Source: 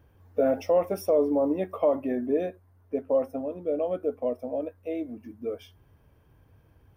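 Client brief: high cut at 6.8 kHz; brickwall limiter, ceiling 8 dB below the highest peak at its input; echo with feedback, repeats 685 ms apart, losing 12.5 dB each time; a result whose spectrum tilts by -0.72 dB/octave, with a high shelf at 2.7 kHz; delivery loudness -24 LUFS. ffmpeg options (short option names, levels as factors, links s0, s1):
-af "lowpass=6800,highshelf=f=2700:g=-9,alimiter=limit=0.0891:level=0:latency=1,aecho=1:1:685|1370|2055:0.237|0.0569|0.0137,volume=2.37"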